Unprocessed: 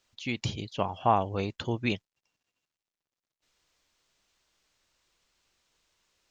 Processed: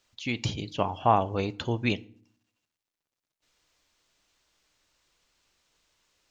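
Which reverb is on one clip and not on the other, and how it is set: FDN reverb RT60 0.51 s, low-frequency decay 1.5×, high-frequency decay 0.75×, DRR 15.5 dB; gain +2 dB

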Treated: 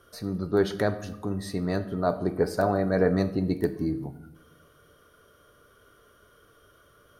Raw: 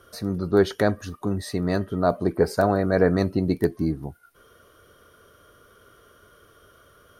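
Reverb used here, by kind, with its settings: shoebox room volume 300 m³, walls mixed, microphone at 0.36 m; gain -4.5 dB

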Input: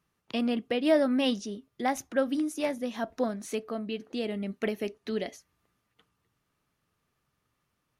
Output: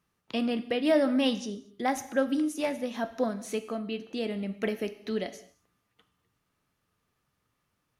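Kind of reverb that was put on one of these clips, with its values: non-linear reverb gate 0.27 s falling, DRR 10 dB

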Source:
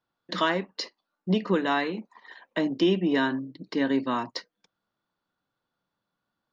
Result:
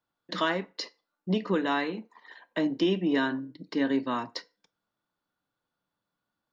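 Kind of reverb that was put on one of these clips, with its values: FDN reverb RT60 0.35 s, low-frequency decay 0.7×, high-frequency decay 0.8×, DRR 15 dB; gain -2.5 dB

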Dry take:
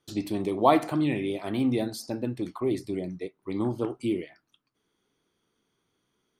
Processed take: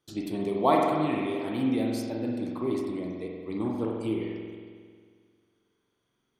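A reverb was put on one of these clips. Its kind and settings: spring tank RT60 1.9 s, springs 45 ms, chirp 55 ms, DRR -0.5 dB; gain -4 dB

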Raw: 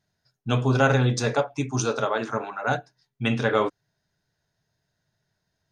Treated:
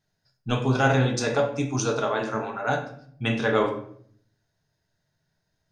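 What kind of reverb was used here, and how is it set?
shoebox room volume 97 m³, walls mixed, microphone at 0.54 m; gain -1.5 dB

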